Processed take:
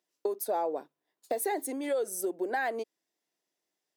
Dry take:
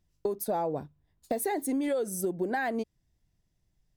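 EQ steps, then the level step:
high-pass filter 330 Hz 24 dB per octave
0.0 dB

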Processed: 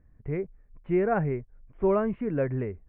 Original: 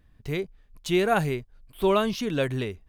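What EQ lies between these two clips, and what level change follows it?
Butterworth low-pass 2,200 Hz 48 dB per octave
low-shelf EQ 370 Hz +7.5 dB
parametric band 510 Hz +4 dB 0.89 octaves
−7.0 dB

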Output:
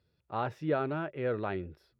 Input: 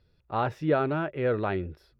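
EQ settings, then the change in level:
high-pass filter 81 Hz
−5.5 dB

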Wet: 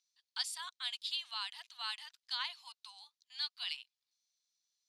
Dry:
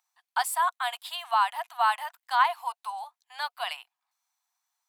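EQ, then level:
four-pole ladder band-pass 5,400 Hz, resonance 35%
high-frequency loss of the air 55 metres
notch filter 7,900 Hz, Q 13
+13.0 dB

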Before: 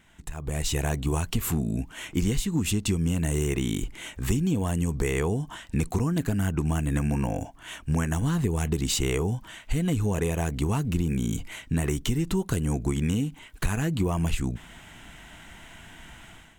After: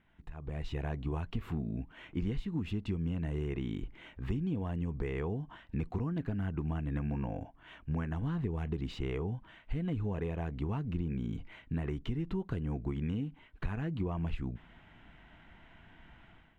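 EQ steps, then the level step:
high-frequency loss of the air 360 metres
−8.5 dB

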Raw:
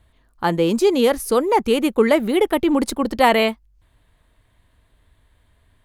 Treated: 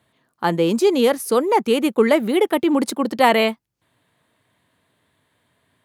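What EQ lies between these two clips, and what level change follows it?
high-pass filter 130 Hz 24 dB per octave
0.0 dB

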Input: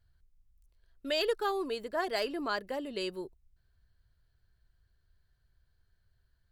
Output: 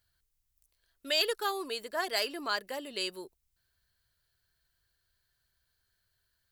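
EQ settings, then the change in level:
spectral tilt +3 dB per octave
0.0 dB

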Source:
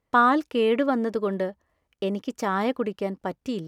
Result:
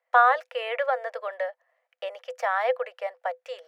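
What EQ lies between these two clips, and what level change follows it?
Chebyshev high-pass with heavy ripple 490 Hz, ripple 9 dB
high-shelf EQ 2,500 Hz −10 dB
+8.5 dB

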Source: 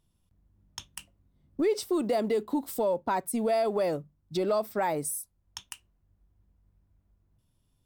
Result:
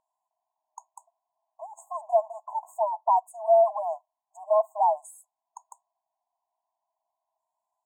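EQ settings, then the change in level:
linear-phase brick-wall high-pass 620 Hz
linear-phase brick-wall band-stop 1,100–6,500 Hz
high-frequency loss of the air 170 metres
+9.0 dB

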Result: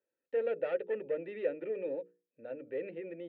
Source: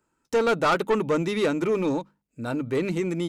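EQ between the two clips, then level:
formant filter e
high-frequency loss of the air 450 metres
mains-hum notches 60/120/180/240/300/360/420/480 Hz
0.0 dB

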